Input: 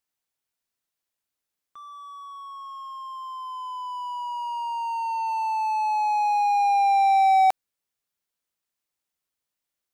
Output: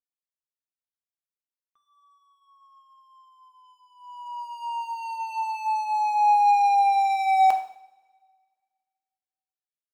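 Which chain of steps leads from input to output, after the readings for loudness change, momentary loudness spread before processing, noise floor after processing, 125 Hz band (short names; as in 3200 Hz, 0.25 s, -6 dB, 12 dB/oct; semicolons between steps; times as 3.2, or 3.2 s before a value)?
+0.5 dB, 20 LU, under -85 dBFS, n/a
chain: gate -30 dBFS, range -19 dB; two-slope reverb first 0.62 s, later 1.9 s, from -23 dB, DRR 4.5 dB; gain -2 dB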